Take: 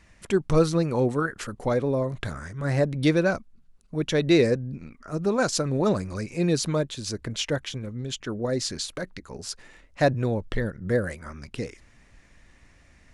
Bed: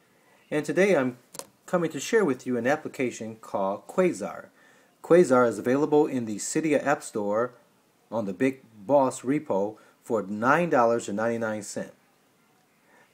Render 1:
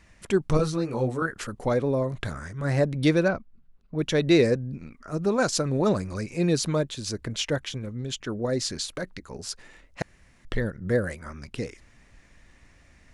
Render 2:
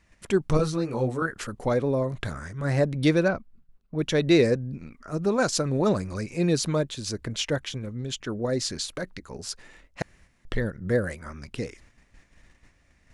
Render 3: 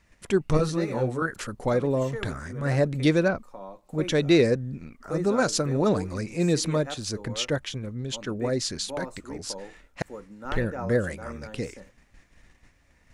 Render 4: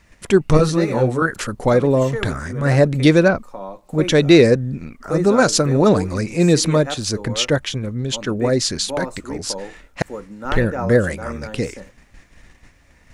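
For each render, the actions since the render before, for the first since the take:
0:00.57–0:01.22: micro pitch shift up and down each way 11 cents; 0:03.28–0:03.99: high-frequency loss of the air 260 metres; 0:10.02–0:10.45: fill with room tone
noise gate −53 dBFS, range −7 dB
mix in bed −14 dB
level +9 dB; brickwall limiter −1 dBFS, peak gain reduction 1 dB

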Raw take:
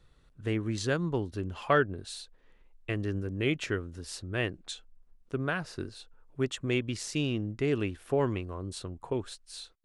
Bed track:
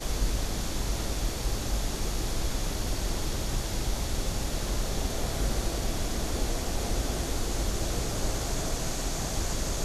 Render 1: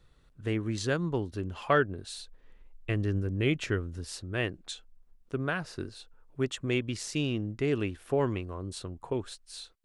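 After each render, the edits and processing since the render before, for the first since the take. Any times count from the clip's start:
0:02.18–0:04.05: low-shelf EQ 140 Hz +7 dB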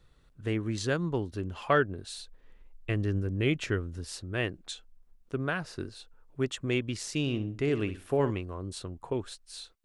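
0:07.20–0:08.31: flutter between parallel walls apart 11 metres, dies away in 0.31 s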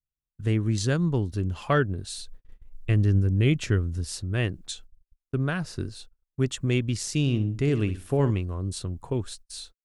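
noise gate −50 dBFS, range −41 dB
bass and treble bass +10 dB, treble +7 dB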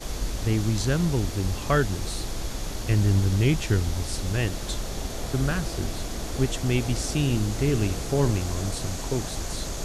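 mix in bed track −1.5 dB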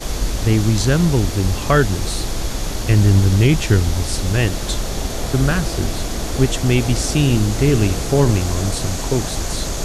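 level +8.5 dB
brickwall limiter −2 dBFS, peak gain reduction 2 dB

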